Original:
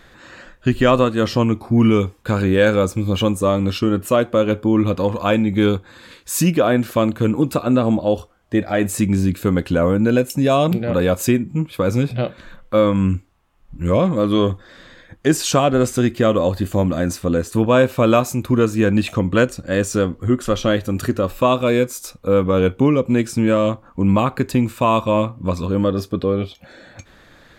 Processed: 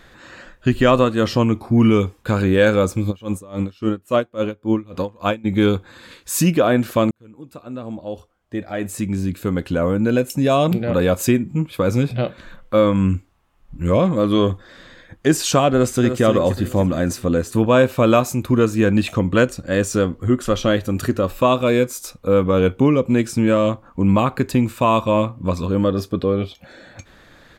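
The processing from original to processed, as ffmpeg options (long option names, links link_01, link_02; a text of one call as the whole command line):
ffmpeg -i in.wav -filter_complex "[0:a]asplit=3[link_01][link_02][link_03];[link_01]afade=type=out:start_time=3.1:duration=0.02[link_04];[link_02]aeval=exprs='val(0)*pow(10,-26*(0.5-0.5*cos(2*PI*3.6*n/s))/20)':channel_layout=same,afade=type=in:start_time=3.1:duration=0.02,afade=type=out:start_time=5.44:duration=0.02[link_05];[link_03]afade=type=in:start_time=5.44:duration=0.02[link_06];[link_04][link_05][link_06]amix=inputs=3:normalize=0,asplit=2[link_07][link_08];[link_08]afade=type=in:start_time=15.73:duration=0.01,afade=type=out:start_time=16.22:duration=0.01,aecho=0:1:300|600|900|1200|1500:0.375837|0.169127|0.0761071|0.0342482|0.0154117[link_09];[link_07][link_09]amix=inputs=2:normalize=0,asplit=2[link_10][link_11];[link_10]atrim=end=7.11,asetpts=PTS-STARTPTS,afade=type=out:start_time=7.106:duration=0.004:curve=hsin[link_12];[link_11]atrim=start=7.11,asetpts=PTS-STARTPTS,afade=type=in:duration=3.68[link_13];[link_12][link_13]concat=n=2:v=0:a=1" out.wav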